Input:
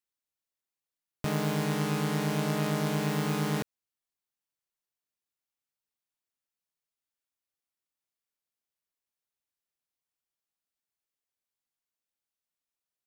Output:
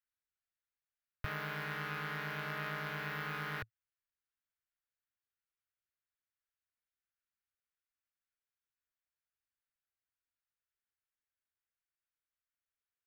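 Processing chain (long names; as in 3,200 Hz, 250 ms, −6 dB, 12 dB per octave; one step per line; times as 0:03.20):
drawn EQ curve 110 Hz 0 dB, 180 Hz −25 dB, 300 Hz −20 dB, 530 Hz −14 dB, 820 Hz −14 dB, 1,500 Hz +1 dB, 4,500 Hz −13 dB, 8,300 Hz −27 dB, 13,000 Hz −13 dB
level +1 dB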